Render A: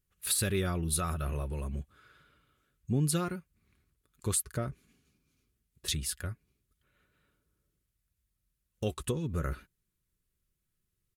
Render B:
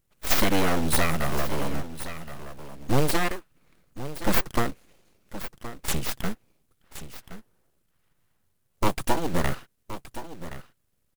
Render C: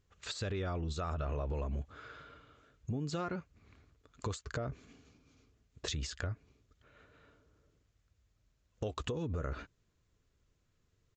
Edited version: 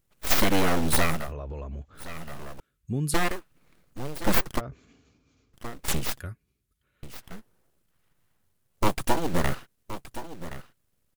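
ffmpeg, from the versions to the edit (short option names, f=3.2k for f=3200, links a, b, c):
-filter_complex "[2:a]asplit=2[a][b];[0:a]asplit=2[c][d];[1:a]asplit=5[e][f][g][h][i];[e]atrim=end=1.33[j];[a]atrim=start=1.09:end=2.16[k];[f]atrim=start=1.92:end=2.602[l];[c]atrim=start=2.598:end=3.142[m];[g]atrim=start=3.138:end=4.61[n];[b]atrim=start=4.57:end=5.57[o];[h]atrim=start=5.53:end=6.202[p];[d]atrim=start=6.198:end=7.032[q];[i]atrim=start=7.028[r];[j][k]acrossfade=d=0.24:c1=tri:c2=tri[s];[s][l]acrossfade=d=0.24:c1=tri:c2=tri[t];[t][m]acrossfade=d=0.004:c1=hsin:c2=hsin[u];[u][n]acrossfade=d=0.004:c1=hsin:c2=hsin[v];[v][o]acrossfade=d=0.04:c1=tri:c2=tri[w];[w][p]acrossfade=d=0.04:c1=tri:c2=tri[x];[x][q]acrossfade=d=0.004:c1=hsin:c2=hsin[y];[y][r]acrossfade=d=0.004:c1=hsin:c2=hsin"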